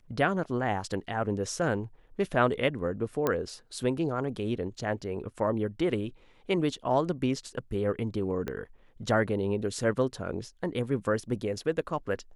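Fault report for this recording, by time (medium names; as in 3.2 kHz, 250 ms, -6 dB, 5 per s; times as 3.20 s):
3.27 s: pop -13 dBFS
8.48 s: pop -20 dBFS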